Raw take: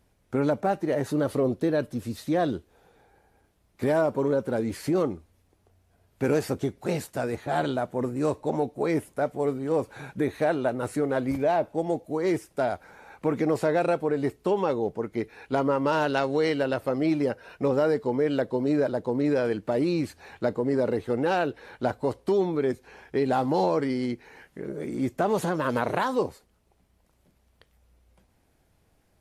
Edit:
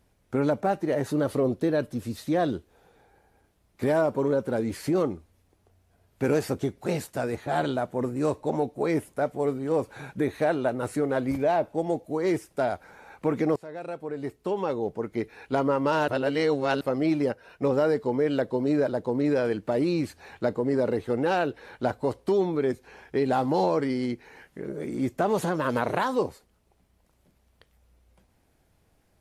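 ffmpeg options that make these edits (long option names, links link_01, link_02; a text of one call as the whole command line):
ffmpeg -i in.wav -filter_complex "[0:a]asplit=6[link_01][link_02][link_03][link_04][link_05][link_06];[link_01]atrim=end=13.56,asetpts=PTS-STARTPTS,afade=type=out:start_time=13.556:duration=0.004:curve=hsin:silence=0.0794328[link_07];[link_02]atrim=start=13.56:end=16.082,asetpts=PTS-STARTPTS,afade=type=in:duration=1.56:silence=0.0794328[link_08];[link_03]atrim=start=16.078:end=16.812,asetpts=PTS-STARTPTS,areverse[link_09];[link_04]atrim=start=16.808:end=17.322[link_10];[link_05]atrim=start=17.318:end=17.622,asetpts=PTS-STARTPTS,volume=-4dB[link_11];[link_06]atrim=start=17.618[link_12];[link_07][link_08]concat=n=2:v=0:a=1[link_13];[link_13][link_09]acrossfade=duration=0.004:curve1=hsin:curve2=hsin[link_14];[link_14][link_10]acrossfade=duration=0.004:curve1=hsin:curve2=hsin[link_15];[link_15][link_11]acrossfade=duration=0.004:curve1=hsin:curve2=hsin[link_16];[link_16][link_12]acrossfade=duration=0.004:curve1=hsin:curve2=hsin" out.wav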